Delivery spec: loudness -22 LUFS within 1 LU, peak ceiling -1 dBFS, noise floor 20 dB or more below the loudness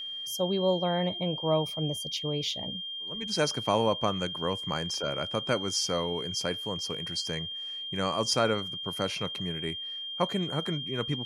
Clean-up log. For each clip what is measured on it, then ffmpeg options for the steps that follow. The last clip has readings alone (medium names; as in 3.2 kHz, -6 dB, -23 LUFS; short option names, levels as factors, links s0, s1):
steady tone 3.2 kHz; tone level -35 dBFS; loudness -30.0 LUFS; peak level -11.5 dBFS; loudness target -22.0 LUFS
-> -af "bandreject=f=3200:w=30"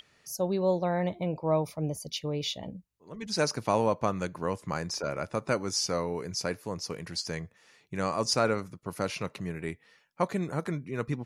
steady tone not found; loudness -31.5 LUFS; peak level -12.0 dBFS; loudness target -22.0 LUFS
-> -af "volume=2.99"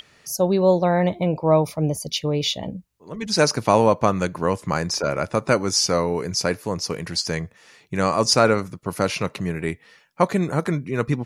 loudness -22.0 LUFS; peak level -2.5 dBFS; noise floor -56 dBFS